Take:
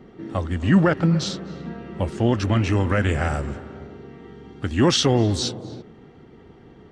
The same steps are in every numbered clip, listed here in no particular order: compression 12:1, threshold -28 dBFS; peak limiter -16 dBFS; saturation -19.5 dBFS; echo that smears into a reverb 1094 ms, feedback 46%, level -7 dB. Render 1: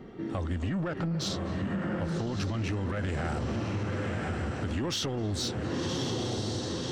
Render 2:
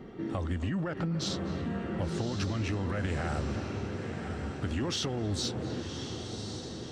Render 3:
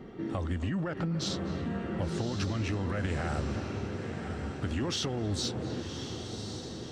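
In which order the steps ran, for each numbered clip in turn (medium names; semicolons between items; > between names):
echo that smears into a reverb > peak limiter > saturation > compression; peak limiter > compression > echo that smears into a reverb > saturation; peak limiter > compression > saturation > echo that smears into a reverb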